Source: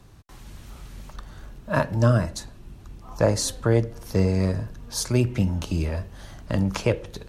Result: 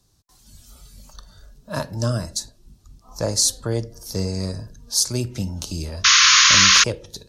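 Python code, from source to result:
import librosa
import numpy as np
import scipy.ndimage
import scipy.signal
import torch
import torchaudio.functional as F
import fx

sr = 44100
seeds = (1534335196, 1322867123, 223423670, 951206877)

y = fx.high_shelf_res(x, sr, hz=3400.0, db=11.5, q=1.5)
y = fx.spec_paint(y, sr, seeds[0], shape='noise', start_s=6.04, length_s=0.8, low_hz=1000.0, high_hz=6900.0, level_db=-9.0)
y = fx.noise_reduce_blind(y, sr, reduce_db=10)
y = y * librosa.db_to_amplitude(-4.0)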